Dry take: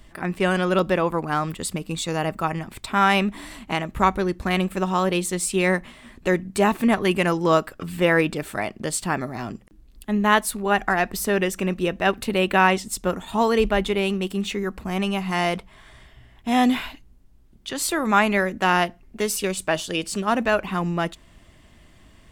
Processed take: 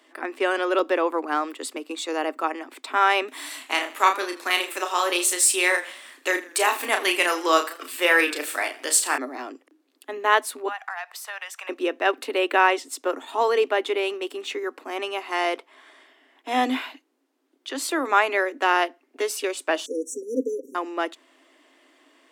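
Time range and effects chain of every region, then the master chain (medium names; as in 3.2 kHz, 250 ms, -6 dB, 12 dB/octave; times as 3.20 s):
3.28–9.18 s: tilt EQ +4 dB/octave + doubling 34 ms -6 dB + modulated delay 81 ms, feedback 42%, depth 93 cents, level -17 dB
10.68–11.69 s: steep high-pass 740 Hz + compression 3:1, threshold -30 dBFS
19.86–20.75 s: brick-wall FIR band-stop 550–5500 Hz + comb 4.2 ms, depth 75%
whole clip: Chebyshev high-pass 260 Hz, order 8; treble shelf 6.8 kHz -6.5 dB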